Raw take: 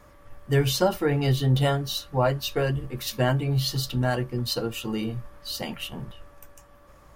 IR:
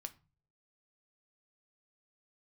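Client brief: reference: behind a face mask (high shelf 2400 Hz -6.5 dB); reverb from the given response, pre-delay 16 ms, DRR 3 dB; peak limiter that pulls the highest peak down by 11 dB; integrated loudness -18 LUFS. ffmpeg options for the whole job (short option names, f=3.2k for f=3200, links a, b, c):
-filter_complex "[0:a]alimiter=limit=-20.5dB:level=0:latency=1,asplit=2[a][b];[1:a]atrim=start_sample=2205,adelay=16[c];[b][c]afir=irnorm=-1:irlink=0,volume=1dB[d];[a][d]amix=inputs=2:normalize=0,highshelf=f=2.4k:g=-6.5,volume=10.5dB"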